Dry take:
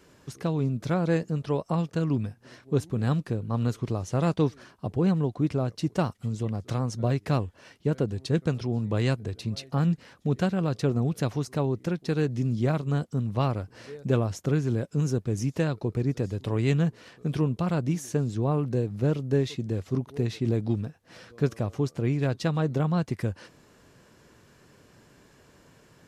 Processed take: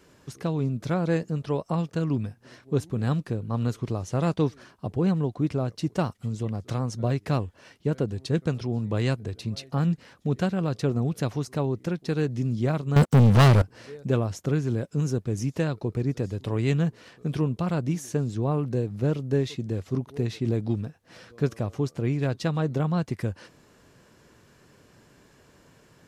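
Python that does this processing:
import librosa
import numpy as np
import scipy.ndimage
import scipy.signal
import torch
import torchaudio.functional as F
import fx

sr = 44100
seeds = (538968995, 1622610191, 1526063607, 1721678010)

y = fx.leveller(x, sr, passes=5, at=(12.96, 13.62))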